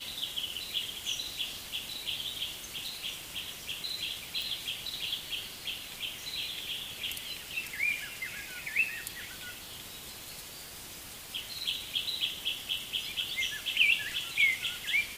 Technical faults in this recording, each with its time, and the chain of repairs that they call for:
surface crackle 31 per second −41 dBFS
0:04.42: click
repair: click removal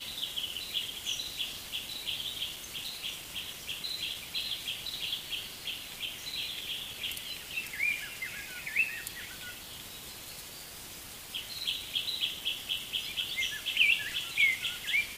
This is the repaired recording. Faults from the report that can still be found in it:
none of them is left

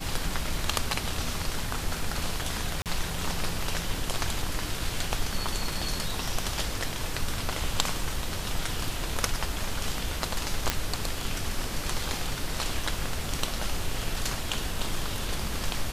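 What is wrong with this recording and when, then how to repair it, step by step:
0:02.82–0:02.86: drop-out 38 ms
0:10.70: click −6 dBFS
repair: click removal
repair the gap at 0:02.82, 38 ms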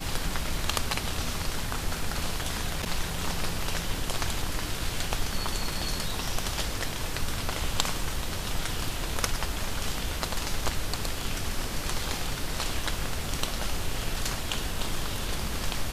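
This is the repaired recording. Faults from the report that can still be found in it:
none of them is left

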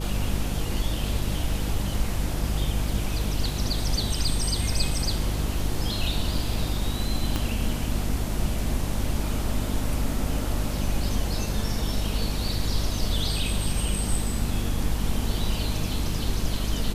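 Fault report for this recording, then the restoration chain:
mains hum 50 Hz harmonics 7 −29 dBFS
0:07.36: click −12 dBFS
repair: click removal
hum removal 50 Hz, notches 7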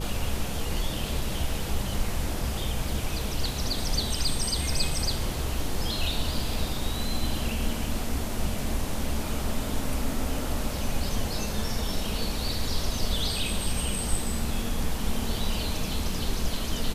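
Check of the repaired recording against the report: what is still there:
0:07.36: click

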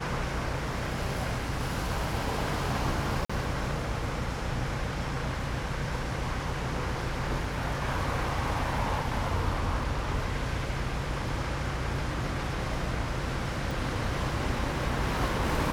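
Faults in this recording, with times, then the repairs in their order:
0:03.25–0:03.29: drop-out 45 ms
0:13.71: click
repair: click removal
repair the gap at 0:03.25, 45 ms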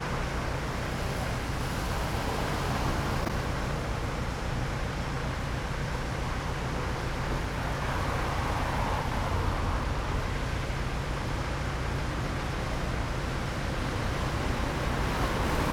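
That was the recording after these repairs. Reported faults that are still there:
none of them is left

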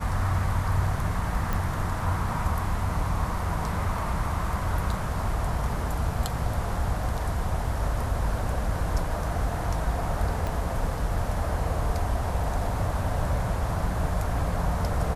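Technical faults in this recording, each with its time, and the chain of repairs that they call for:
0:01.53: click
0:10.47: click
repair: click removal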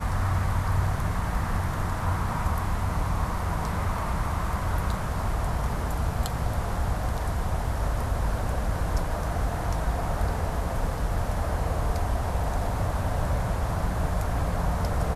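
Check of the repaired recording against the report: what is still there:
0:01.53: click
0:10.47: click

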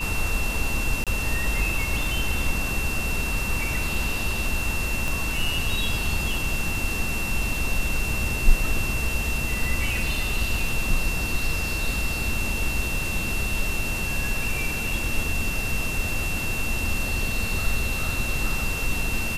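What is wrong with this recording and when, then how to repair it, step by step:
whistle 2,700 Hz −29 dBFS
0:01.04–0:01.07: drop-out 27 ms
0:05.08: click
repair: click removal
notch filter 2,700 Hz, Q 30
repair the gap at 0:01.04, 27 ms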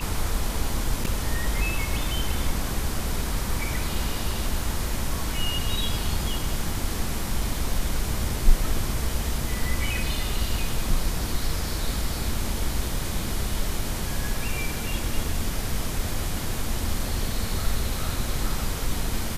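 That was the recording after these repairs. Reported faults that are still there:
0:05.08: click

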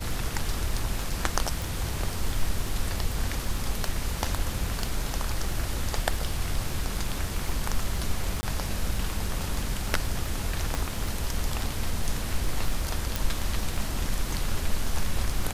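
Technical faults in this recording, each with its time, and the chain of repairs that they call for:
surface crackle 23 per second −30 dBFS
0:01.62: click
0:08.41–0:08.43: drop-out 20 ms
0:10.75: click
0:13.16: click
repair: click removal
repair the gap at 0:08.41, 20 ms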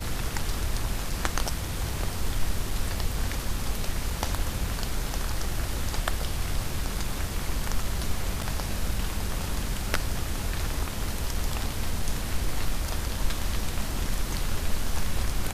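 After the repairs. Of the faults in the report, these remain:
0:10.75: click

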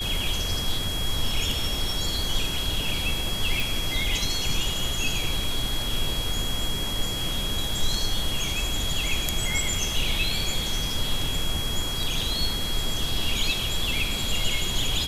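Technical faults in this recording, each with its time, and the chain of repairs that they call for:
whistle 3,300 Hz −30 dBFS
0:03.60: click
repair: click removal
notch filter 3,300 Hz, Q 30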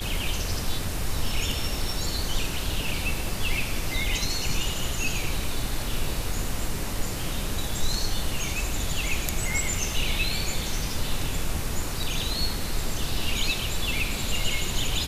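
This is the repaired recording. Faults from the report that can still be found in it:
none of them is left

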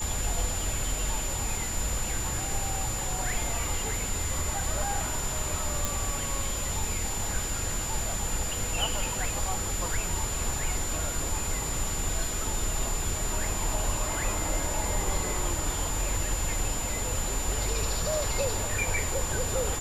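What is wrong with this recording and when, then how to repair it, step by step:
whistle 7,100 Hz −33 dBFS
0:05.85: click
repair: click removal
notch filter 7,100 Hz, Q 30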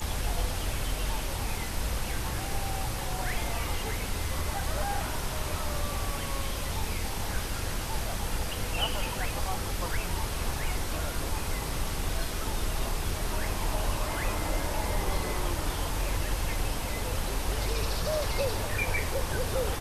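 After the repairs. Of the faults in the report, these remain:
none of them is left

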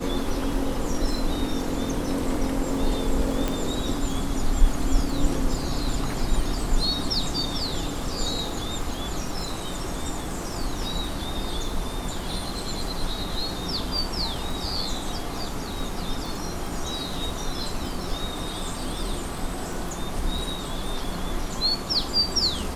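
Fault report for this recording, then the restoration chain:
surface crackle 36 per second −32 dBFS
0:03.48: click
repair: click removal

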